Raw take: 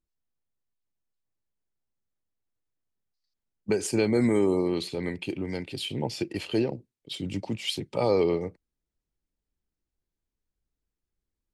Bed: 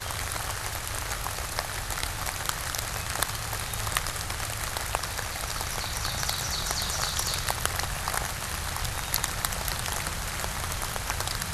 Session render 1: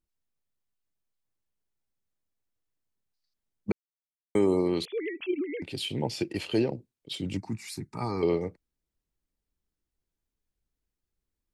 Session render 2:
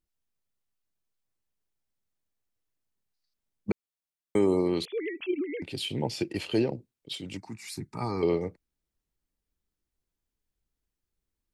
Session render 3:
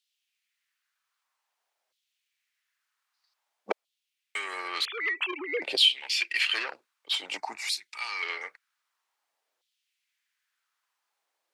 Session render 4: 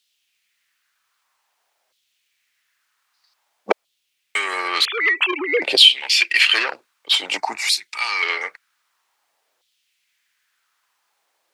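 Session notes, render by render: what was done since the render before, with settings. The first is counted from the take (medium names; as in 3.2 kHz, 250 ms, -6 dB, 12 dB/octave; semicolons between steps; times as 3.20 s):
3.72–4.35 s: mute; 4.85–5.62 s: formants replaced by sine waves; 7.37–8.23 s: static phaser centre 1.3 kHz, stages 4
7.14–7.63 s: bass shelf 390 Hz -9.5 dB
overdrive pedal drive 18 dB, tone 3.7 kHz, clips at -13 dBFS; LFO high-pass saw down 0.52 Hz 560–3500 Hz
trim +11.5 dB; peak limiter -1 dBFS, peak gain reduction 2 dB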